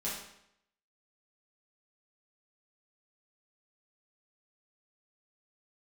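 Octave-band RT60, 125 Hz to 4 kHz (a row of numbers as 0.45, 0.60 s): 0.75, 0.75, 0.75, 0.75, 0.75, 0.65 s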